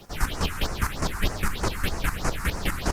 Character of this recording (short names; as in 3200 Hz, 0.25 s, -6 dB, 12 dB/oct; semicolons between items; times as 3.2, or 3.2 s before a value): phasing stages 4, 3.2 Hz, lowest notch 520–3400 Hz; chopped level 4.9 Hz, depth 65%, duty 25%; a quantiser's noise floor 12-bit, dither triangular; Opus